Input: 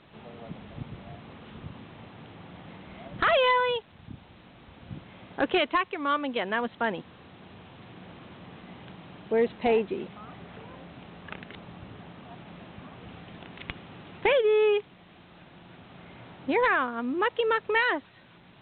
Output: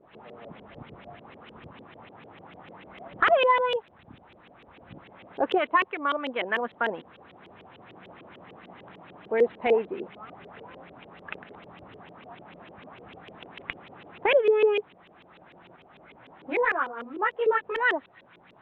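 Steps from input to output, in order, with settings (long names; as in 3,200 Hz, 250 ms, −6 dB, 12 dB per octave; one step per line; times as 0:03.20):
0:15.76–0:17.81: multi-voice chorus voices 6, 1.2 Hz, delay 16 ms, depth 3.4 ms
auto-filter low-pass saw up 6.7 Hz 390–3,200 Hz
bass and treble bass −8 dB, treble +6 dB
level −1.5 dB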